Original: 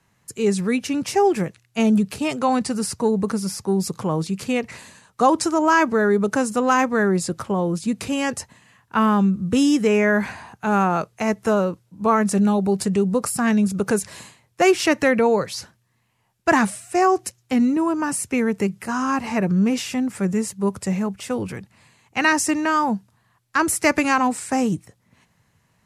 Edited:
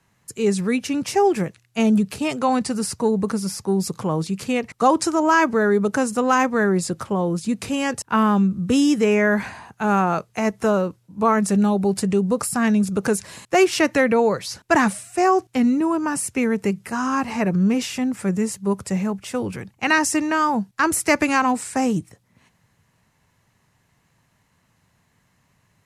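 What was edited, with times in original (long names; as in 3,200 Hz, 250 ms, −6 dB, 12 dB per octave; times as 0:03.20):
truncate silence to 0.13 s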